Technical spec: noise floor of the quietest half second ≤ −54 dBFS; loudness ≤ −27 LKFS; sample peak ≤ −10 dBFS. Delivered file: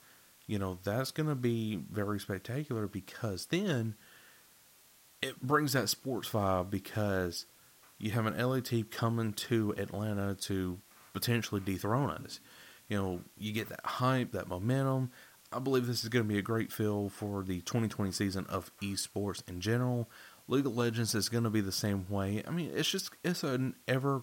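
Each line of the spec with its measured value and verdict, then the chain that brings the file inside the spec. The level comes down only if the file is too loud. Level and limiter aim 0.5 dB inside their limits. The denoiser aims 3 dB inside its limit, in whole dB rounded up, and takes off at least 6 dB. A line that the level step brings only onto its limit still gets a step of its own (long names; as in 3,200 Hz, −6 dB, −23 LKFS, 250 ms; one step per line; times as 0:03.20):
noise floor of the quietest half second −62 dBFS: in spec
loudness −34.5 LKFS: in spec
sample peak −14.0 dBFS: in spec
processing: no processing needed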